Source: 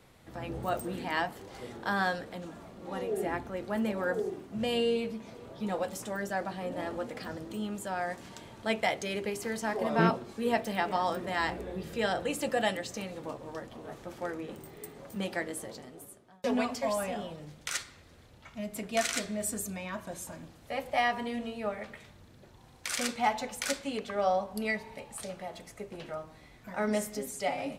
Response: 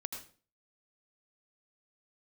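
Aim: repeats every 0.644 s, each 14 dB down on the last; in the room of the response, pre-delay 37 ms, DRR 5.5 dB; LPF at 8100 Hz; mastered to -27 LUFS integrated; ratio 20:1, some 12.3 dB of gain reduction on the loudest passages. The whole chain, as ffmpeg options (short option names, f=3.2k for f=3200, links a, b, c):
-filter_complex "[0:a]lowpass=8.1k,acompressor=threshold=-32dB:ratio=20,aecho=1:1:644|1288:0.2|0.0399,asplit=2[a][b];[1:a]atrim=start_sample=2205,adelay=37[c];[b][c]afir=irnorm=-1:irlink=0,volume=-4.5dB[d];[a][d]amix=inputs=2:normalize=0,volume=10.5dB"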